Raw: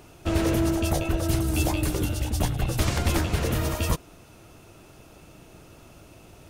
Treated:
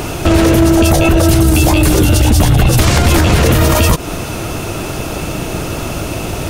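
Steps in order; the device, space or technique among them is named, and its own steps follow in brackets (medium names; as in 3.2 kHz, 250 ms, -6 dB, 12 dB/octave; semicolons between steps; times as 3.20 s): loud club master (compression 3:1, threshold -27 dBFS, peak gain reduction 7.5 dB; hard clipper -20 dBFS, distortion -33 dB; loudness maximiser +30 dB); trim -1 dB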